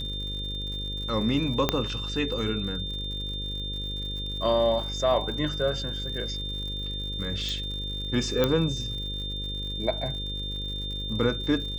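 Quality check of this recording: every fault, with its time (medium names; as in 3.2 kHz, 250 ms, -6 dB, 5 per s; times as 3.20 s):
buzz 50 Hz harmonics 11 -35 dBFS
crackle 100 per s -37 dBFS
whine 3.6 kHz -33 dBFS
1.69 s: pop -7 dBFS
7.49 s: pop
8.44 s: pop -10 dBFS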